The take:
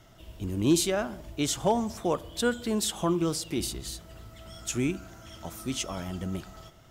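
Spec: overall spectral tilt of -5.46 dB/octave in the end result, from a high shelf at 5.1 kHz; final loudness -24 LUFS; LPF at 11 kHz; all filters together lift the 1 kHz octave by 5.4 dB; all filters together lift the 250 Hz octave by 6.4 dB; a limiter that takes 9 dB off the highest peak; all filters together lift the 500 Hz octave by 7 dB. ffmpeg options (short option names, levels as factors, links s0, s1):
-af "lowpass=11000,equalizer=f=250:t=o:g=6,equalizer=f=500:t=o:g=6,equalizer=f=1000:t=o:g=4.5,highshelf=f=5100:g=-6.5,volume=1.5,alimiter=limit=0.251:level=0:latency=1"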